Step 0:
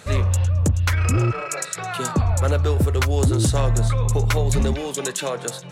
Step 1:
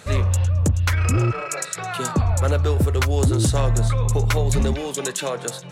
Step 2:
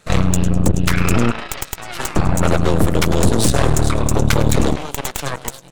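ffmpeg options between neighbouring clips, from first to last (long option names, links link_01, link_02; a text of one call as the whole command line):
ffmpeg -i in.wav -af anull out.wav
ffmpeg -i in.wav -filter_complex "[0:a]asplit=6[link_01][link_02][link_03][link_04][link_05][link_06];[link_02]adelay=100,afreqshift=110,volume=-15.5dB[link_07];[link_03]adelay=200,afreqshift=220,volume=-21.3dB[link_08];[link_04]adelay=300,afreqshift=330,volume=-27.2dB[link_09];[link_05]adelay=400,afreqshift=440,volume=-33dB[link_10];[link_06]adelay=500,afreqshift=550,volume=-38.9dB[link_11];[link_01][link_07][link_08][link_09][link_10][link_11]amix=inputs=6:normalize=0,aeval=exprs='0.335*(cos(1*acos(clip(val(0)/0.335,-1,1)))-cos(1*PI/2))+0.0841*(cos(3*acos(clip(val(0)/0.335,-1,1)))-cos(3*PI/2))+0.133*(cos(4*acos(clip(val(0)/0.335,-1,1)))-cos(4*PI/2))':channel_layout=same,volume=3dB" out.wav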